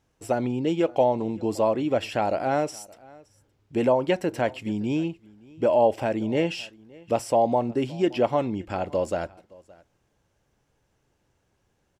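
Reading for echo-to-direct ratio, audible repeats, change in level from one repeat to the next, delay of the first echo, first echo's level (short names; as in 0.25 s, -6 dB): -24.0 dB, 1, no steady repeat, 0.569 s, -24.0 dB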